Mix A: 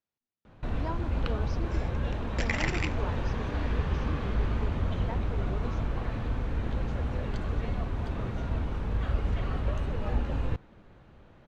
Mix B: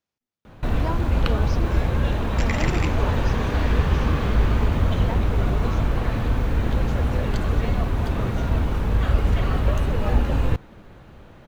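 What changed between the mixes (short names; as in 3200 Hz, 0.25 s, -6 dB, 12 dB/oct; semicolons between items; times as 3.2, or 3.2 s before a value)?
speech +6.0 dB; first sound +9.0 dB; master: remove air absorption 62 m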